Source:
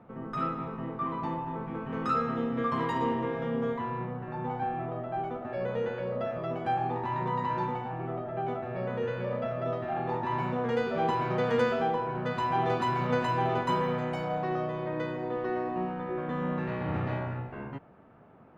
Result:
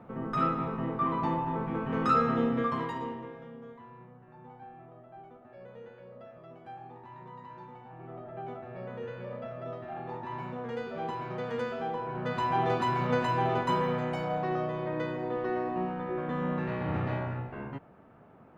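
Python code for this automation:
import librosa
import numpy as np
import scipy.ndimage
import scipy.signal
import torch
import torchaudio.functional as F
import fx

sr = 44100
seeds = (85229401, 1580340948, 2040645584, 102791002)

y = fx.gain(x, sr, db=fx.line((2.48, 3.5), (3.0, -7.0), (3.59, -16.5), (7.66, -16.5), (8.25, -7.5), (11.72, -7.5), (12.37, 0.0)))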